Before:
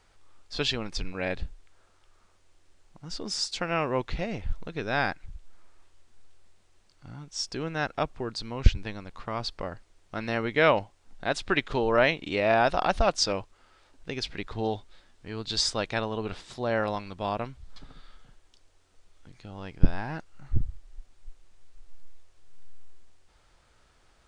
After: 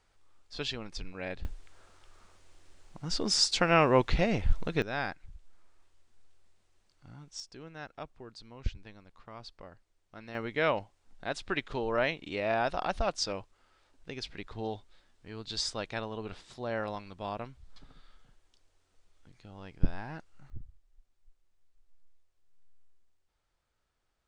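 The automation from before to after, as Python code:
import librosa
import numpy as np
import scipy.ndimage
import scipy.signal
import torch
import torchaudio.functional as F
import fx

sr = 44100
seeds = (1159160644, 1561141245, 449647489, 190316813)

y = fx.gain(x, sr, db=fx.steps((0.0, -7.5), (1.45, 4.5), (4.82, -7.0), (7.4, -14.5), (10.35, -7.0), (20.5, -18.0)))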